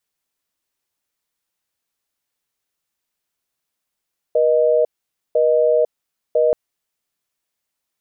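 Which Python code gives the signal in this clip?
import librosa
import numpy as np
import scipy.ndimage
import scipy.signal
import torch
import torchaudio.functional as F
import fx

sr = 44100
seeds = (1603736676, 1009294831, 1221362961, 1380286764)

y = fx.call_progress(sr, length_s=2.18, kind='busy tone', level_db=-15.0)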